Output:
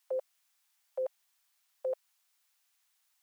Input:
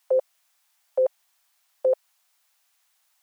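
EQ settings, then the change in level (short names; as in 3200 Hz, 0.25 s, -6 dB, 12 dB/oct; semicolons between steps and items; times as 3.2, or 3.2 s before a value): HPF 1000 Hz 6 dB/oct; -6.0 dB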